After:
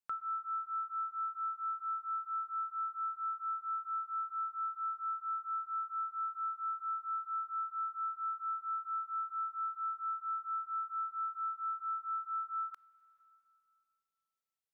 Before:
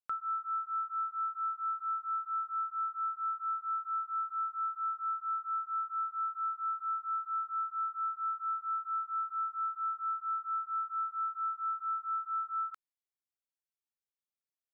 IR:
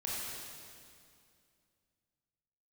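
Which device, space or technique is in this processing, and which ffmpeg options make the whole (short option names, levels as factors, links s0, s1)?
compressed reverb return: -filter_complex "[0:a]asplit=2[s0][s1];[1:a]atrim=start_sample=2205[s2];[s1][s2]afir=irnorm=-1:irlink=0,acompressor=threshold=0.00398:ratio=5,volume=0.237[s3];[s0][s3]amix=inputs=2:normalize=0,volume=0.708"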